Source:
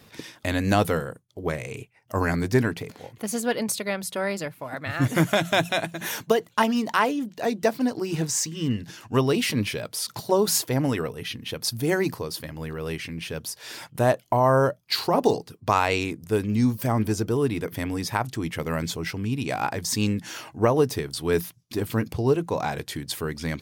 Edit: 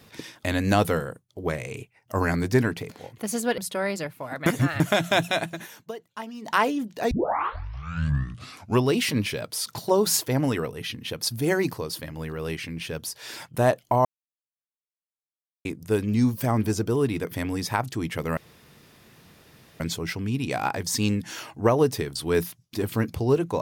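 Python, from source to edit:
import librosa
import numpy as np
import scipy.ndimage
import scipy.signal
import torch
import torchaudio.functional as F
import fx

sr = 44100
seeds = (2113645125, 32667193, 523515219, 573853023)

y = fx.edit(x, sr, fx.cut(start_s=3.58, length_s=0.41),
    fx.reverse_span(start_s=4.87, length_s=0.34),
    fx.fade_down_up(start_s=5.95, length_s=1.0, db=-15.0, fade_s=0.13),
    fx.tape_start(start_s=7.52, length_s=1.77),
    fx.silence(start_s=14.46, length_s=1.6),
    fx.insert_room_tone(at_s=18.78, length_s=1.43), tone=tone)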